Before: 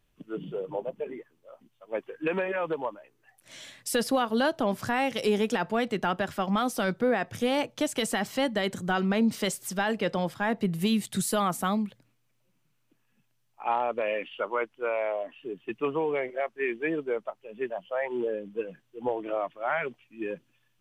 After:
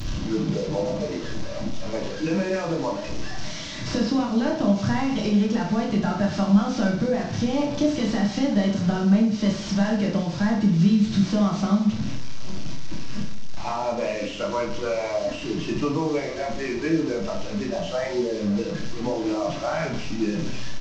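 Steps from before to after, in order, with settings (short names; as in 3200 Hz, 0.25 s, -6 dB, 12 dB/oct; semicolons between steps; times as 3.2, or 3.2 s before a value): delta modulation 32 kbps, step -35 dBFS; tone controls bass +5 dB, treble +8 dB; compressor, threshold -28 dBFS, peak gain reduction 10 dB; reverse bouncing-ball echo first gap 30 ms, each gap 1.25×, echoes 5; on a send at -1.5 dB: reverb RT60 0.30 s, pre-delay 3 ms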